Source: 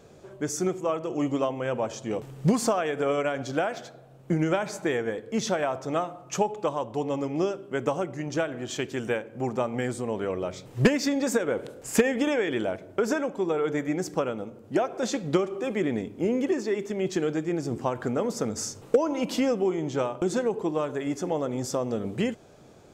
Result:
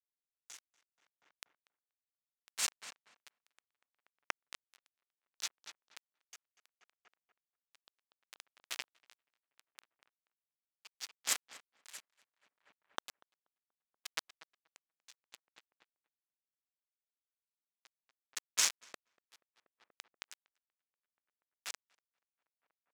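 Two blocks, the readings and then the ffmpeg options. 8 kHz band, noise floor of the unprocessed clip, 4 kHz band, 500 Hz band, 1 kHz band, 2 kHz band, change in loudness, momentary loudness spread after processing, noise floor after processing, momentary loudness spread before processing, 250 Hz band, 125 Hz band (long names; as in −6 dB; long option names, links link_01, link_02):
−4.5 dB, −51 dBFS, −5.5 dB, −39.0 dB, −23.0 dB, −14.5 dB, −11.5 dB, 23 LU, below −85 dBFS, 6 LU, below −40 dB, below −40 dB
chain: -filter_complex "[0:a]acrossover=split=3200[link_01][link_02];[link_01]acompressor=threshold=-34dB:ratio=8[link_03];[link_02]flanger=delay=4.1:depth=3:regen=-58:speed=0.29:shape=triangular[link_04];[link_03][link_04]amix=inputs=2:normalize=0,crystalizer=i=2.5:c=0,acrusher=bits=3:mix=0:aa=0.000001,bandpass=frequency=2400:width_type=q:width=0.65:csg=0,asplit=2[link_05][link_06];[link_06]adelay=240,lowpass=frequency=2400:poles=1,volume=-14.5dB,asplit=2[link_07][link_08];[link_08]adelay=240,lowpass=frequency=2400:poles=1,volume=0.5,asplit=2[link_09][link_10];[link_10]adelay=240,lowpass=frequency=2400:poles=1,volume=0.5,asplit=2[link_11][link_12];[link_12]adelay=240,lowpass=frequency=2400:poles=1,volume=0.5,asplit=2[link_13][link_14];[link_14]adelay=240,lowpass=frequency=2400:poles=1,volume=0.5[link_15];[link_07][link_09][link_11][link_13][link_15]amix=inputs=5:normalize=0[link_16];[link_05][link_16]amix=inputs=2:normalize=0,aeval=exprs='val(0)*pow(10,-27*(0.5-0.5*cos(2*PI*0.7*n/s))/20)':channel_layout=same,volume=6dB"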